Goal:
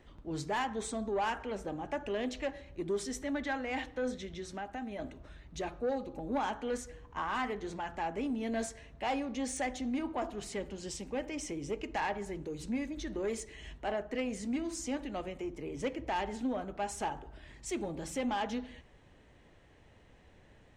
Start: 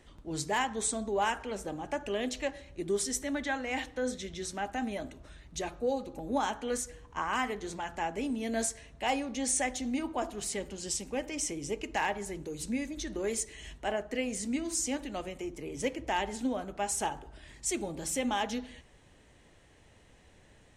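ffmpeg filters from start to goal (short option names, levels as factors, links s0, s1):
-filter_complex "[0:a]equalizer=f=11000:t=o:w=1.8:g=-13.5,asettb=1/sr,asplit=3[s0][s1][s2];[s0]atrim=end=4.174[s3];[s1]atrim=start=4.17:end=4.99,asetpts=PTS-STARTPTS,afade=t=in:d=0.004:c=qsin,afade=t=out:st=0.816:d=0.004:c=qsin,acompressor=threshold=0.0126:ratio=3[s4];[s2]atrim=start=4.986[s5];[s3][s4]acrossfade=d=0.004:c1=hsin:c2=qsin[s6];[s6][s5]acrossfade=d=0.004:c1=qsin:c2=hsin,asoftclip=type=tanh:threshold=0.0501"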